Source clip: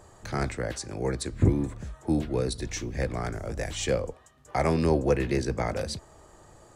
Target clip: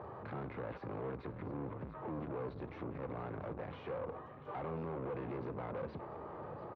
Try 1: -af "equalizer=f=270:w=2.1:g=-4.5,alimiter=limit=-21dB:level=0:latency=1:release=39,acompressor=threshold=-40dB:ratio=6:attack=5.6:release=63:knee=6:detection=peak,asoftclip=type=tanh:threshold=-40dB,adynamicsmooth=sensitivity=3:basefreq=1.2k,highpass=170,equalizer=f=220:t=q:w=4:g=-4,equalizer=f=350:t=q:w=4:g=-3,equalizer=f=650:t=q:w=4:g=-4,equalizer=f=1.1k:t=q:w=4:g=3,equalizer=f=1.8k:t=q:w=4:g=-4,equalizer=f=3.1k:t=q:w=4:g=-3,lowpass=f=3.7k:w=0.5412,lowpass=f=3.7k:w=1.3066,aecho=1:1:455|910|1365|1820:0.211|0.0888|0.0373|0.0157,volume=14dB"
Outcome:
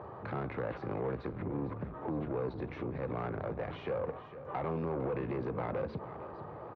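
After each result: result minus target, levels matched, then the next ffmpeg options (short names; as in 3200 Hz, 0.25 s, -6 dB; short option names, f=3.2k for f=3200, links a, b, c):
echo 0.235 s early; soft clip: distortion -6 dB
-af "equalizer=f=270:w=2.1:g=-4.5,alimiter=limit=-21dB:level=0:latency=1:release=39,acompressor=threshold=-40dB:ratio=6:attack=5.6:release=63:knee=6:detection=peak,asoftclip=type=tanh:threshold=-40dB,adynamicsmooth=sensitivity=3:basefreq=1.2k,highpass=170,equalizer=f=220:t=q:w=4:g=-4,equalizer=f=350:t=q:w=4:g=-3,equalizer=f=650:t=q:w=4:g=-4,equalizer=f=1.1k:t=q:w=4:g=3,equalizer=f=1.8k:t=q:w=4:g=-4,equalizer=f=3.1k:t=q:w=4:g=-3,lowpass=f=3.7k:w=0.5412,lowpass=f=3.7k:w=1.3066,aecho=1:1:690|1380|2070|2760:0.211|0.0888|0.0373|0.0157,volume=14dB"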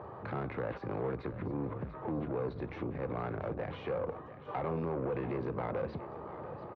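soft clip: distortion -6 dB
-af "equalizer=f=270:w=2.1:g=-4.5,alimiter=limit=-21dB:level=0:latency=1:release=39,acompressor=threshold=-40dB:ratio=6:attack=5.6:release=63:knee=6:detection=peak,asoftclip=type=tanh:threshold=-48.5dB,adynamicsmooth=sensitivity=3:basefreq=1.2k,highpass=170,equalizer=f=220:t=q:w=4:g=-4,equalizer=f=350:t=q:w=4:g=-3,equalizer=f=650:t=q:w=4:g=-4,equalizer=f=1.1k:t=q:w=4:g=3,equalizer=f=1.8k:t=q:w=4:g=-4,equalizer=f=3.1k:t=q:w=4:g=-3,lowpass=f=3.7k:w=0.5412,lowpass=f=3.7k:w=1.3066,aecho=1:1:690|1380|2070|2760:0.211|0.0888|0.0373|0.0157,volume=14dB"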